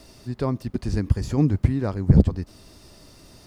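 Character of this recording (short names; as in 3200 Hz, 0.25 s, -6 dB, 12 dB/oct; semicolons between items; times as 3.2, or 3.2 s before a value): noise floor -50 dBFS; spectral tilt -9.5 dB/oct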